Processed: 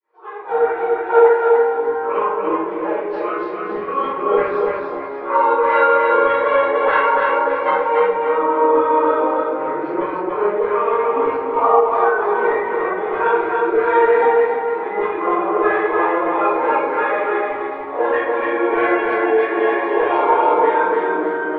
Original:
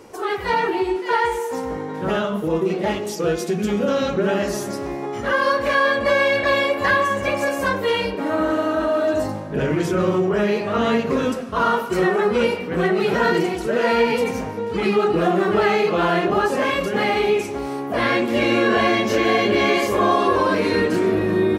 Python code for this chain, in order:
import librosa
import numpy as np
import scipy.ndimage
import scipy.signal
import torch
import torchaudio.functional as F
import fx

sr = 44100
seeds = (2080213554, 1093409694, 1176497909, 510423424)

p1 = fx.fade_in_head(x, sr, length_s=0.93)
p2 = scipy.signal.sosfilt(scipy.signal.butter(2, 350.0, 'highpass', fs=sr, output='sos'), p1)
p3 = fx.high_shelf(p2, sr, hz=8600.0, db=-6.0)
p4 = p3 + 0.47 * np.pad(p3, (int(6.5 * sr / 1000.0), 0))[:len(p3)]
p5 = fx.rider(p4, sr, range_db=3, speed_s=2.0)
p6 = p4 + (p5 * 10.0 ** (1.0 / 20.0))
p7 = fx.filter_lfo_bandpass(p6, sr, shape='saw_down', hz=1.6, low_hz=680.0, high_hz=2000.0, q=1.8)
p8 = fx.formant_shift(p7, sr, semitones=-3)
p9 = fx.air_absorb(p8, sr, metres=360.0)
p10 = fx.echo_feedback(p9, sr, ms=290, feedback_pct=35, wet_db=-3)
p11 = fx.room_shoebox(p10, sr, seeds[0], volume_m3=120.0, walls='mixed', distance_m=3.0)
y = p11 * 10.0 ** (-10.0 / 20.0)